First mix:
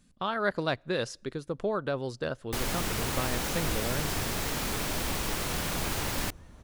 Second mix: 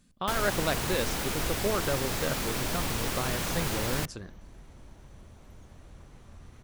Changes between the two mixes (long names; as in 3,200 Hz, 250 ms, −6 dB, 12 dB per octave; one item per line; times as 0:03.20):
first sound: entry −2.25 s
second sound: entry −2.40 s